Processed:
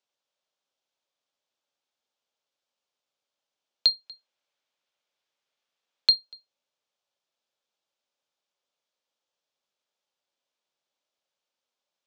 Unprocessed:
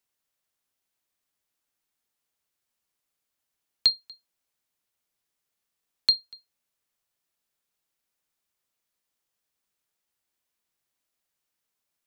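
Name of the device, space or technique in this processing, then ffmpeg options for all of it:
television speaker: -filter_complex "[0:a]highpass=180,equalizer=frequency=190:width_type=q:width=4:gain=-5,equalizer=frequency=310:width_type=q:width=4:gain=-3,equalizer=frequency=560:width_type=q:width=4:gain=8,equalizer=frequency=840:width_type=q:width=4:gain=3,equalizer=frequency=1900:width_type=q:width=4:gain=-5,equalizer=frequency=3400:width_type=q:width=4:gain=4,lowpass=frequency=6500:width=0.5412,lowpass=frequency=6500:width=1.3066,asettb=1/sr,asplit=3[link_01][link_02][link_03];[link_01]atrim=end=4.064[link_04];[link_02]atrim=start=4.06:end=6.15,asetpts=PTS-STARTPTS,afade=type=in:duration=0.004:curve=qsin,afade=type=out:start_time=2.086:duration=0.004:curve=qsin,equalizer=frequency=2000:width=0.84:gain=5.5[link_05];[link_03]atrim=start=6.146[link_06];[link_04][link_05]acrossfade=duration=0.004:curve1=hsin:curve2=qsin[link_07];[link_07][link_06]acrossfade=duration=0.004:curve1=qsin:curve2=hsin,volume=-1dB"

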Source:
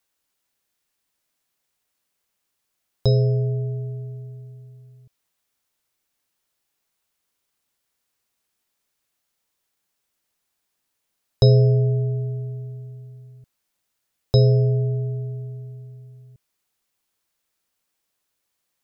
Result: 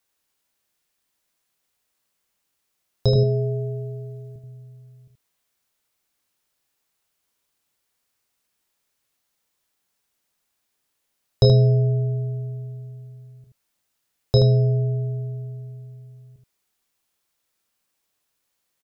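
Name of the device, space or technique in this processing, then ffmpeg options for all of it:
slapback doubling: -filter_complex "[0:a]asettb=1/sr,asplit=3[link_01][link_02][link_03];[link_01]atrim=end=3.154[link_04];[link_02]atrim=start=3.15:end=4.36,asetpts=PTS-STARTPTS,afade=type=in:duration=0.004:curve=qsin,afade=type=out:start_time=1.206:duration=0.004:curve=qsin,aecho=1:1:5:0.96,atrim=end_sample=53361[link_05];[link_03]atrim=start=4.356[link_06];[link_04][link_05]acrossfade=duration=0.004:curve1=hsin:curve2=qsin[link_07];[link_07][link_06]acrossfade=duration=0.004:curve1=qsin:curve2=hsin,asplit=3[link_08][link_09][link_10];[link_09]adelay=27,volume=-8.5dB[link_11];[link_10]adelay=78,volume=-6dB[link_12];[link_08][link_11][link_12]amix=inputs=3:normalize=0"

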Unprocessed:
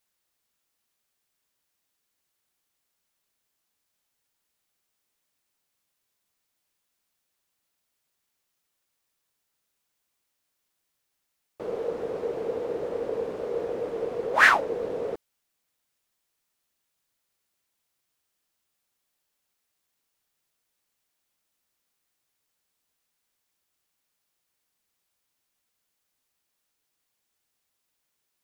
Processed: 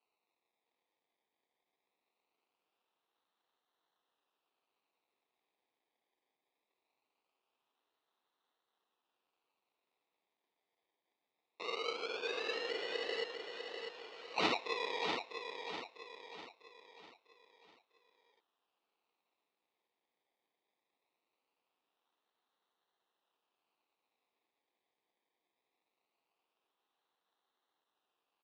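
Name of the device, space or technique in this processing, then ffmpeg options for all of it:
circuit-bent sampling toy: -filter_complex "[0:a]asettb=1/sr,asplit=3[link_01][link_02][link_03];[link_01]atrim=end=13.244[link_04];[link_02]atrim=start=13.24:end=14.66,asetpts=PTS-STARTPTS,afade=type=in:duration=0.004:curve=qsin,afade=type=out:start_time=1.416:duration=0.004:curve=qsin,highpass=1300[link_05];[link_03]atrim=start=14.656[link_06];[link_04][link_05]acrossfade=duration=0.004:curve1=hsin:curve2=qsin[link_07];[link_07][link_06]acrossfade=duration=0.004:curve1=qsin:curve2=hsin,acrusher=samples=25:mix=1:aa=0.000001:lfo=1:lforange=15:lforate=0.21,highpass=500,equalizer=frequency=590:width_type=q:width=4:gain=-7,equalizer=frequency=1500:width_type=q:width=4:gain=-4,equalizer=frequency=2600:width_type=q:width=4:gain=5,equalizer=frequency=3900:width_type=q:width=4:gain=6,lowpass=frequency=4900:width=0.5412,lowpass=frequency=4900:width=1.3066,aecho=1:1:649|1298|1947|2596|3245:0.473|0.208|0.0916|0.0403|0.0177,volume=-5.5dB"

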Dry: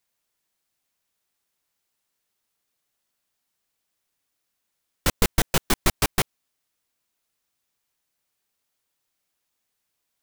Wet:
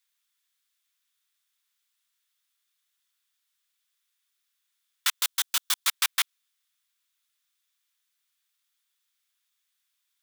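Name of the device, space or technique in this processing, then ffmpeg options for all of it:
headphones lying on a table: -filter_complex "[0:a]highpass=frequency=1200:width=0.5412,highpass=frequency=1200:width=1.3066,equalizer=frequency=3500:width_type=o:width=0.24:gain=7,asettb=1/sr,asplit=3[link_01][link_02][link_03];[link_01]atrim=end=5.224[link_04];[link_02]atrim=start=5.22:end=5.88,asetpts=PTS-STARTPTS,afade=type=in:duration=0.004:curve=qsin,afade=type=out:start_time=0.656:duration=0.004:curve=qsin,equalizer=frequency=125:width_type=o:width=1:gain=-4,equalizer=frequency=250:width_type=o:width=1:gain=6,equalizer=frequency=500:width_type=o:width=1:gain=-6,equalizer=frequency=2000:width_type=o:width=1:gain=-7[link_05];[link_03]atrim=start=5.876[link_06];[link_04][link_05]acrossfade=duration=0.004:curve1=hsin:curve2=qsin[link_07];[link_07][link_06]acrossfade=duration=0.004:curve1=qsin:curve2=hsin"

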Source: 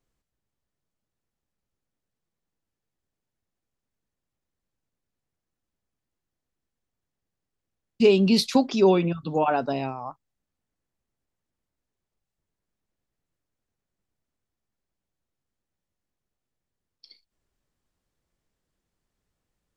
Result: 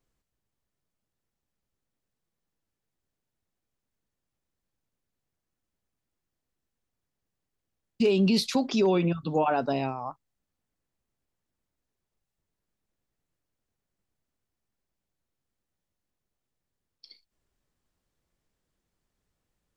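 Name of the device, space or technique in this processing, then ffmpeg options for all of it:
clipper into limiter: -af "asoftclip=type=hard:threshold=-9dB,alimiter=limit=-15.5dB:level=0:latency=1:release=59"

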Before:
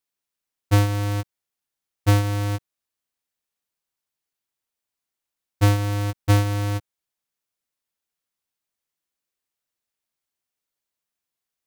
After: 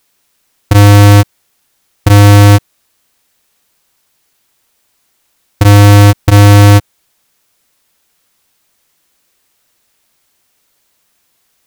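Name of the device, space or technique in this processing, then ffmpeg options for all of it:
loud club master: -af "acompressor=threshold=-21dB:ratio=1.5,asoftclip=type=hard:threshold=-18.5dB,alimiter=level_in=27.5dB:limit=-1dB:release=50:level=0:latency=1,volume=-1dB"

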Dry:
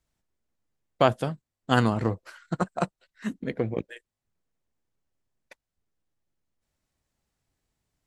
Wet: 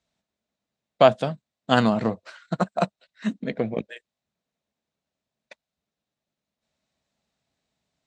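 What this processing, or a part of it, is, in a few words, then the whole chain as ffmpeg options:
car door speaker: -af "highpass=92,equalizer=frequency=100:width_type=q:width=4:gain=-9,equalizer=frequency=210:width_type=q:width=4:gain=5,equalizer=frequency=340:width_type=q:width=4:gain=-4,equalizer=frequency=640:width_type=q:width=4:gain=7,equalizer=frequency=2500:width_type=q:width=4:gain=3,equalizer=frequency=3800:width_type=q:width=4:gain=7,lowpass=frequency=7800:width=0.5412,lowpass=frequency=7800:width=1.3066,volume=1.5dB"

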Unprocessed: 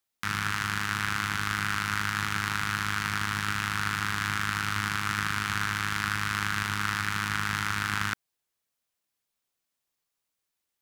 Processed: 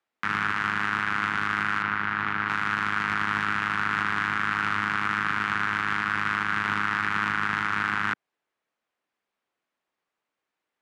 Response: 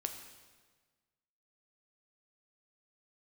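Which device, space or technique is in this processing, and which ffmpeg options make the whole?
DJ mixer with the lows and highs turned down: -filter_complex "[0:a]lowpass=8200,acrossover=split=190 2600:gain=0.178 1 0.141[link_01][link_02][link_03];[link_01][link_02][link_03]amix=inputs=3:normalize=0,alimiter=limit=-21dB:level=0:latency=1:release=37,asettb=1/sr,asplit=3[link_04][link_05][link_06];[link_04]atrim=end=1.824[link_07];[link_05]atrim=start=1.82:end=2.49,asetpts=PTS-STARTPTS,afade=type=in:duration=0.004:curve=qsin,afade=type=out:start_time=0.666:duration=0.004:curve=qsin,equalizer=frequency=8300:width=0.81:gain=-14.5[link_08];[link_06]atrim=start=2.486[link_09];[link_07][link_08]acrossfade=duration=0.004:curve1=hsin:curve2=qsin[link_10];[link_10][link_09]acrossfade=duration=0.004:curve1=qsin:curve2=hsin,volume=8dB"

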